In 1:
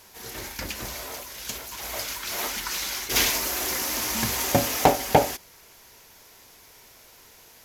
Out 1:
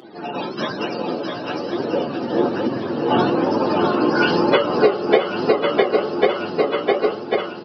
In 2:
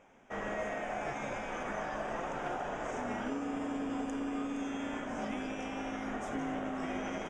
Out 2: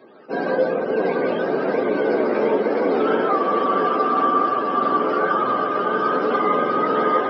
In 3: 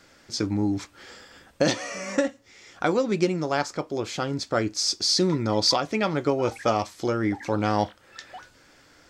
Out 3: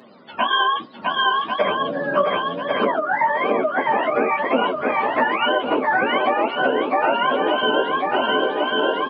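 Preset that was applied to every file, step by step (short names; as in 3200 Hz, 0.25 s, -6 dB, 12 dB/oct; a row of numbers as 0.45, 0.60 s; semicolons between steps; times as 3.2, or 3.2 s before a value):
spectrum mirrored in octaves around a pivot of 570 Hz; HPF 280 Hz 24 dB/oct; on a send: swung echo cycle 1.093 s, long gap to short 1.5:1, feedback 46%, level -4.5 dB; on the sum: compressor 16:1, threshold -30 dBFS; downsampling 11025 Hz; flange 1.1 Hz, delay 7.3 ms, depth 9.9 ms, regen +49%; ending taper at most 210 dB/s; match loudness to -20 LUFS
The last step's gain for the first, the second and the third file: +22.5, +23.0, +19.0 dB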